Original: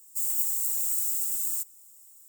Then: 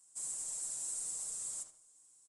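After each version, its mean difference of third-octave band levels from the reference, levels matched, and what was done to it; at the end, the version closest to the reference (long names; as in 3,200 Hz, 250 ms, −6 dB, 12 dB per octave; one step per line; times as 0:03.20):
7.0 dB: comb filter 6.5 ms, depth 84%
feedback echo with a low-pass in the loop 74 ms, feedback 40%, low-pass 3,300 Hz, level −6 dB
downsampling to 22,050 Hz
level −8 dB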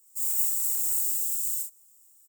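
2.0 dB: ambience of single reflections 39 ms −3.5 dB, 66 ms −5 dB
healed spectral selection 0:00.91–0:01.64, 300–2,600 Hz both
expander for the loud parts 1.5 to 1, over −37 dBFS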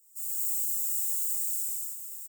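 5.0 dB: guitar amp tone stack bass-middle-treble 5-5-5
single-tap delay 809 ms −10.5 dB
reverb whose tail is shaped and stops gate 350 ms flat, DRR −7.5 dB
level −4.5 dB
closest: second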